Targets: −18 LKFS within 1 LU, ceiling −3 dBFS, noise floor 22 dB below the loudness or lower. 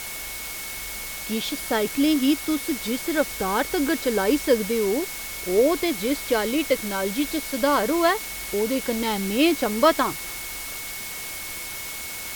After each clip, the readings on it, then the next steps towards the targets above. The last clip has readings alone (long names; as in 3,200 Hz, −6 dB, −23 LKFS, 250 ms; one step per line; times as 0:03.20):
interfering tone 2,200 Hz; level of the tone −38 dBFS; background noise floor −34 dBFS; target noise floor −46 dBFS; integrated loudness −24.0 LKFS; sample peak −5.0 dBFS; target loudness −18.0 LKFS
→ notch filter 2,200 Hz, Q 30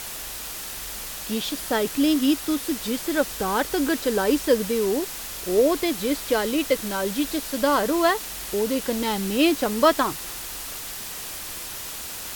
interfering tone none found; background noise floor −35 dBFS; target noise floor −46 dBFS
→ broadband denoise 11 dB, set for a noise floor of −35 dBFS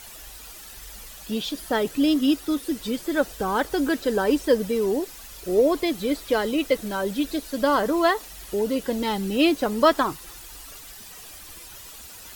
background noise floor −43 dBFS; target noise floor −46 dBFS
→ broadband denoise 6 dB, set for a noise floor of −43 dBFS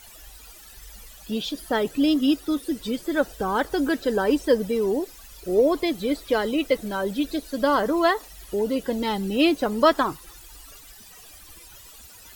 background noise floor −47 dBFS; integrated loudness −24.0 LKFS; sample peak −5.5 dBFS; target loudness −18.0 LKFS
→ level +6 dB
brickwall limiter −3 dBFS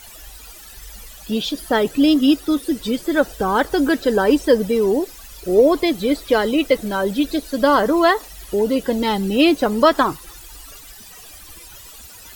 integrated loudness −18.0 LKFS; sample peak −3.0 dBFS; background noise floor −41 dBFS